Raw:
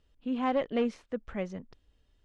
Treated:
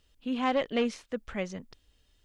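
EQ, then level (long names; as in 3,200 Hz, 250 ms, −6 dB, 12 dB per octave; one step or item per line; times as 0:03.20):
high-shelf EQ 2,300 Hz +12 dB
0.0 dB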